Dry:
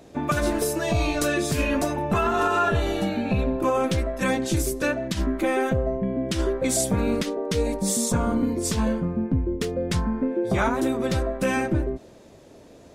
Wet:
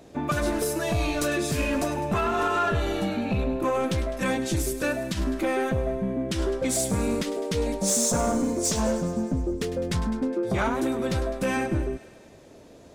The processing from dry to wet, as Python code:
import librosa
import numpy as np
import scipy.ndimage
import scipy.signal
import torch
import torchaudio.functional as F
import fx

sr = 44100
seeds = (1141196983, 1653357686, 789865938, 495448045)

y = fx.graphic_eq_15(x, sr, hz=(100, 630, 6300), db=(-6, 9, 9), at=(7.81, 9.51))
y = 10.0 ** (-16.0 / 20.0) * np.tanh(y / 10.0 ** (-16.0 / 20.0))
y = fx.echo_wet_highpass(y, sr, ms=103, feedback_pct=68, hz=1400.0, wet_db=-13.0)
y = y * librosa.db_to_amplitude(-1.0)